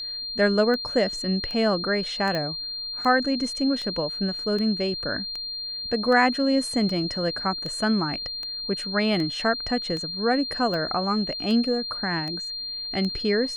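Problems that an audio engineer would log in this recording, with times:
tick 78 rpm -20 dBFS
whine 4.2 kHz -30 dBFS
2.35 s: pop -15 dBFS

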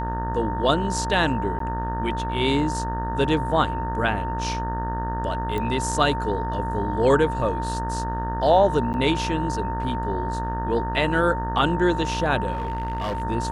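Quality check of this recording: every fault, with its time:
buzz 60 Hz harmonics 31 -29 dBFS
whine 910 Hz -28 dBFS
1.59–1.60 s: dropout 13 ms
5.58 s: pop -16 dBFS
8.93–8.94 s: dropout 9.7 ms
12.53–13.22 s: clipped -23 dBFS

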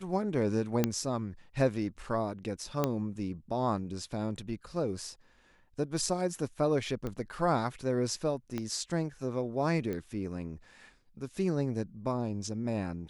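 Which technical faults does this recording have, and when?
0.84 s: pop -12 dBFS
2.84 s: pop -14 dBFS
7.07 s: pop -24 dBFS
8.58 s: pop -21 dBFS
9.93 s: pop -24 dBFS

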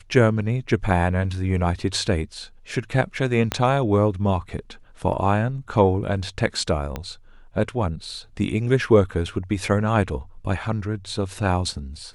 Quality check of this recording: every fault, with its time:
3.52 s: pop -7 dBFS
6.96 s: pop -14 dBFS

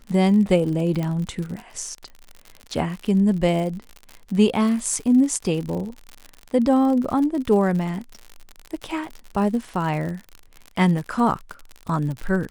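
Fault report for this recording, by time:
crackle 70 per s -29 dBFS
1.03 s: pop -15 dBFS

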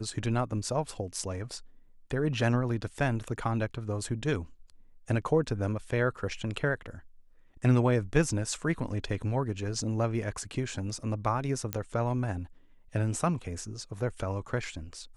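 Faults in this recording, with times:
11.73 s: pop -13 dBFS

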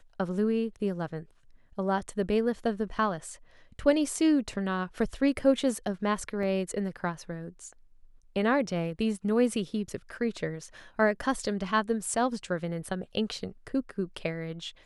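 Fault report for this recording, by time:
6.43 s: dropout 2.6 ms

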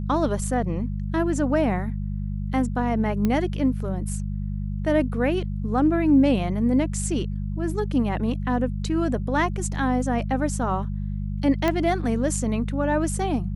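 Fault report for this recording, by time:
hum 50 Hz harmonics 4 -28 dBFS
3.25 s: pop -12 dBFS
11.68 s: pop -10 dBFS

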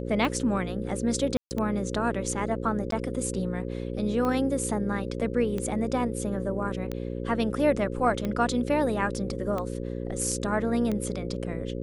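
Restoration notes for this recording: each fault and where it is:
buzz 60 Hz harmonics 9 -33 dBFS
tick 45 rpm -18 dBFS
1.37–1.51 s: dropout 139 ms
2.91–2.92 s: dropout 13 ms

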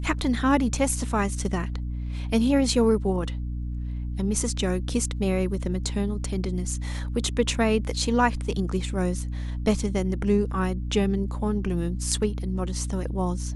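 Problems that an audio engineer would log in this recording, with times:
hum 60 Hz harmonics 5 -30 dBFS

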